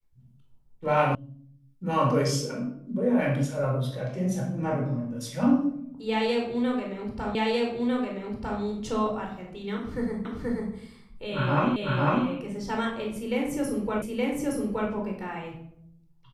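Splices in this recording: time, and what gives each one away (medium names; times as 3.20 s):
1.15 s: sound stops dead
7.35 s: repeat of the last 1.25 s
10.25 s: repeat of the last 0.48 s
11.76 s: repeat of the last 0.5 s
14.02 s: repeat of the last 0.87 s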